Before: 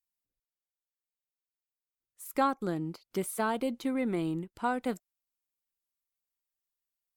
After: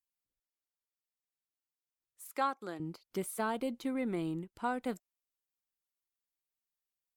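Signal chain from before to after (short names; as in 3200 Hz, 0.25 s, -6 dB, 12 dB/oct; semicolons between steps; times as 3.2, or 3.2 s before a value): 2.27–2.8 weighting filter A; gain -4 dB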